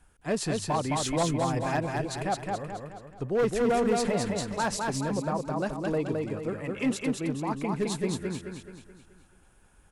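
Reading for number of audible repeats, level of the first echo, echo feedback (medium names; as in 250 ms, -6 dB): 5, -3.0 dB, 46%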